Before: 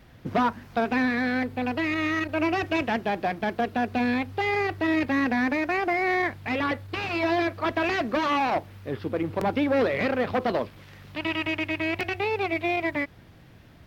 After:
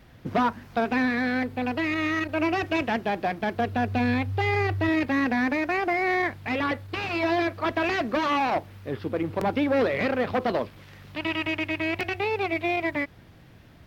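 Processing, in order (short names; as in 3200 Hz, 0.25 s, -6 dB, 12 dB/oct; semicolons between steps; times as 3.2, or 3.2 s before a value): 3.54–4.89 bell 100 Hz +12.5 dB 0.38 oct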